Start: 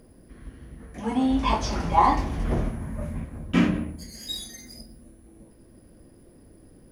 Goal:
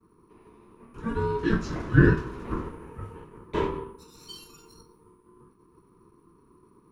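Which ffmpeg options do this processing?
-af "agate=range=0.0224:threshold=0.00355:ratio=3:detection=peak,highpass=f=310:w=0.5412,highpass=f=310:w=1.3066,aeval=exprs='val(0)*sin(2*PI*690*n/s)':c=same,tiltshelf=f=880:g=9"

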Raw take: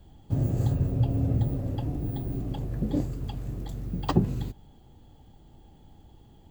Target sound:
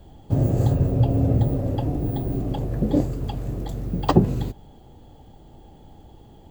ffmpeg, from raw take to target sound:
-af "equalizer=f=560:w=0.9:g=6,volume=1.78"

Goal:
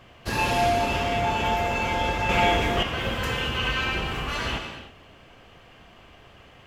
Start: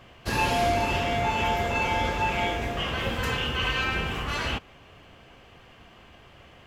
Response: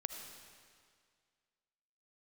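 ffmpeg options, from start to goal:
-filter_complex "[1:a]atrim=start_sample=2205,afade=t=out:st=0.39:d=0.01,atrim=end_sample=17640[s0];[0:a][s0]afir=irnorm=-1:irlink=0,asettb=1/sr,asplit=3[s1][s2][s3];[s1]atrim=end=2.294[s4];[s2]atrim=start=2.29:end=2.83,asetpts=PTS-STARTPTS,afade=t=in:d=0.004:c=qsin,afade=t=out:st=0.536:d=0.004:c=qsin,acontrast=30[s5];[s3]atrim=start=2.826[s6];[s4][s5]acrossfade=d=0.004:c1=hsin:c2=qsin[s7];[s7][s6]acrossfade=d=0.004:c1=qsin:c2=hsin,volume=1.26"

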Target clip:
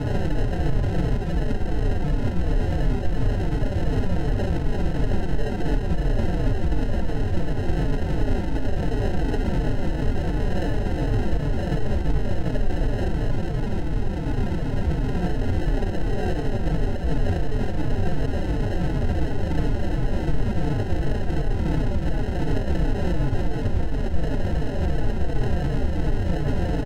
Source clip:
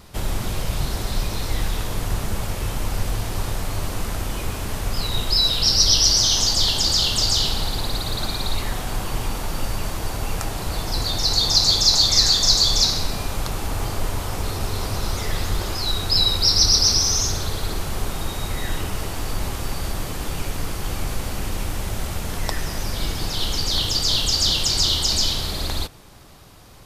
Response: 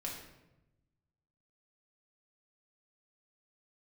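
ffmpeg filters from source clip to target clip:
-filter_complex "[0:a]equalizer=f=6400:w=3.8:g=-8,asplit=2[s0][s1];[s1]highpass=f=720:p=1,volume=50.1,asoftclip=type=tanh:threshold=0.668[s2];[s0][s2]amix=inputs=2:normalize=0,lowpass=f=1800:p=1,volume=0.501,asplit=2[s3][s4];[s4]adelay=145.8,volume=0.398,highshelf=f=4000:g=-3.28[s5];[s3][s5]amix=inputs=2:normalize=0[s6];[1:a]atrim=start_sample=2205,afade=t=out:st=0.33:d=0.01,atrim=end_sample=14994,asetrate=27342,aresample=44100[s7];[s6][s7]afir=irnorm=-1:irlink=0,acompressor=threshold=0.112:ratio=10,asettb=1/sr,asplit=3[s8][s9][s10];[s8]atrim=end=12.914[s11];[s9]atrim=start=12.91:end=15.15,asetpts=PTS-STARTPTS,afade=t=in:d=0.004:c=qsin,afade=t=out:st=2.236:d=0.004:c=qsin,highpass=f=1100:w=0.5412,highpass=f=1100:w=1.3066[s12];[s10]atrim=start=15.146[s13];[s11][s12]acrossfade=d=0.004:c1=hsin:c2=qsin[s14];[s14][s13]acrossfade=d=0.004:c1=qsin:c2=hsin,acrusher=samples=38:mix=1:aa=0.000001,aemphasis=mode=reproduction:type=bsi,alimiter=limit=0.299:level=0:latency=1:release=126,asplit=2[s15][s16];[s16]adelay=4.2,afreqshift=-2.8[s17];[s15][s17]amix=inputs=2:normalize=1"

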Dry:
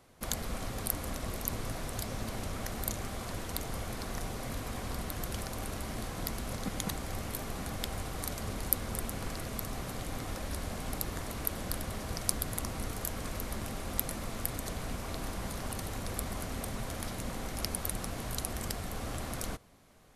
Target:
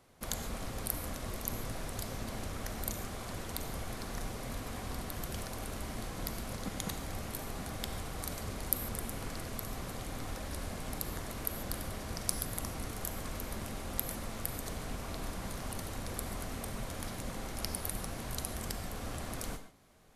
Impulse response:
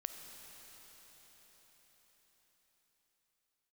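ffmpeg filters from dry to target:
-filter_complex "[1:a]atrim=start_sample=2205,afade=t=out:st=0.25:d=0.01,atrim=end_sample=11466,asetrate=57330,aresample=44100[s0];[0:a][s0]afir=irnorm=-1:irlink=0,volume=1.41"

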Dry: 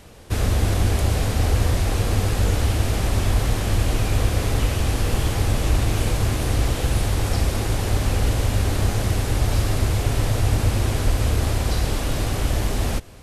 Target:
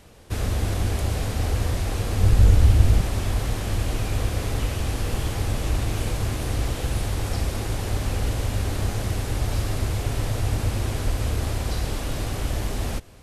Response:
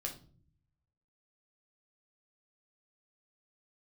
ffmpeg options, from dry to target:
-filter_complex "[0:a]asettb=1/sr,asplit=3[s0][s1][s2];[s0]atrim=end=2.204[s3];[s1]atrim=start=2.2:end=3.01,asetpts=PTS-STARTPTS,afade=t=in:d=0.004:c=qsin,afade=t=out:st=0.806:d=0.004:c=qsin,lowshelf=f=170:g=12[s4];[s2]atrim=start=3.006[s5];[s3][s4]acrossfade=d=0.004:c1=hsin:c2=qsin[s6];[s6][s5]acrossfade=d=0.004:c1=qsin:c2=hsin,volume=0.596"

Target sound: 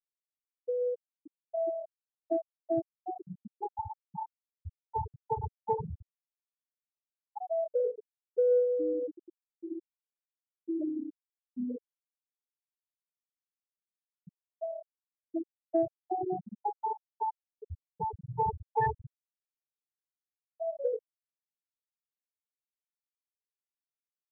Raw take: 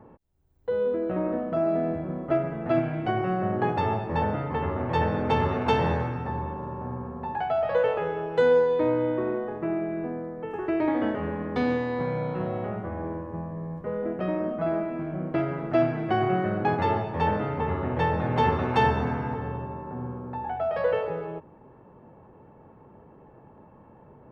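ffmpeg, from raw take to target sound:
-af "crystalizer=i=2:c=0,afftfilt=real='re*gte(hypot(re,im),0.447)':imag='im*gte(hypot(re,im),0.447)':win_size=1024:overlap=0.75,aeval=exprs='0.251*(cos(1*acos(clip(val(0)/0.251,-1,1)))-cos(1*PI/2))+0.00316*(cos(3*acos(clip(val(0)/0.251,-1,1)))-cos(3*PI/2))':c=same,volume=0.562"

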